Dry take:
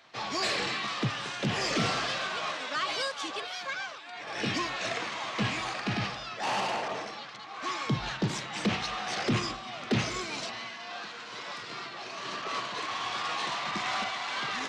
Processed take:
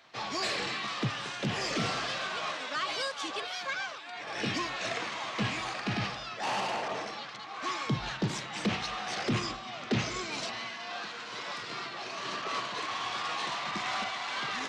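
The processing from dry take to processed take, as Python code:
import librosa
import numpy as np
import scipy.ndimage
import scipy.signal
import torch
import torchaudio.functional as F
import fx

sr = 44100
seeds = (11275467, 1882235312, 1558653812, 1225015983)

p1 = fx.steep_lowpass(x, sr, hz=8300.0, slope=48, at=(9.44, 10.32))
p2 = fx.rider(p1, sr, range_db=4, speed_s=0.5)
p3 = p1 + F.gain(torch.from_numpy(p2), 1.5).numpy()
y = F.gain(torch.from_numpy(p3), -8.0).numpy()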